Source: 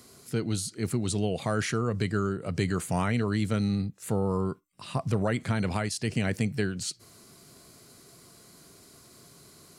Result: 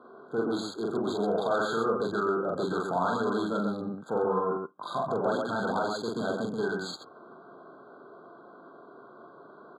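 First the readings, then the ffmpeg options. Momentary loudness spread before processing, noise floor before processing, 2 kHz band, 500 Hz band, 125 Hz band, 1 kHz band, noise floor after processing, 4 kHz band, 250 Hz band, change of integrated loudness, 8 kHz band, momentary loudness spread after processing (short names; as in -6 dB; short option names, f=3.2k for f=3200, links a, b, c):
7 LU, -55 dBFS, -0.5 dB, +4.0 dB, -12.5 dB, +6.0 dB, -52 dBFS, -3.0 dB, -2.5 dB, -0.5 dB, -13.0 dB, 8 LU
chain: -filter_complex "[0:a]asplit=2[a][b];[b]highpass=f=720:p=1,volume=22dB,asoftclip=type=tanh:threshold=-14.5dB[c];[a][c]amix=inputs=2:normalize=0,lowpass=f=1.6k:p=1,volume=-6dB,aecho=1:1:43.73|131.2:0.891|0.708,acrossover=split=2000[d][e];[e]acrusher=bits=4:mix=0:aa=0.5[f];[d][f]amix=inputs=2:normalize=0,highpass=250,lowpass=6.1k,afftfilt=real='re*eq(mod(floor(b*sr/1024/1600),2),0)':imag='im*eq(mod(floor(b*sr/1024/1600),2),0)':win_size=1024:overlap=0.75,volume=-4.5dB"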